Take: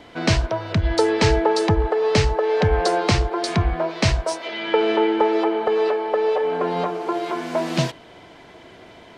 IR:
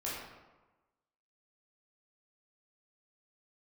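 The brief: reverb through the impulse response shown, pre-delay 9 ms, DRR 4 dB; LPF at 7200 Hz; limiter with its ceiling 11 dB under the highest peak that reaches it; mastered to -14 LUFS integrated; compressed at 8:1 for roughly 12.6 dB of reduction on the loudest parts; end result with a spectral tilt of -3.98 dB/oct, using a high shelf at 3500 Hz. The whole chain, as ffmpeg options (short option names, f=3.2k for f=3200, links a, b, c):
-filter_complex "[0:a]lowpass=7.2k,highshelf=f=3.5k:g=7,acompressor=threshold=-26dB:ratio=8,alimiter=limit=-21.5dB:level=0:latency=1,asplit=2[a][b];[1:a]atrim=start_sample=2205,adelay=9[c];[b][c]afir=irnorm=-1:irlink=0,volume=-7.5dB[d];[a][d]amix=inputs=2:normalize=0,volume=14.5dB"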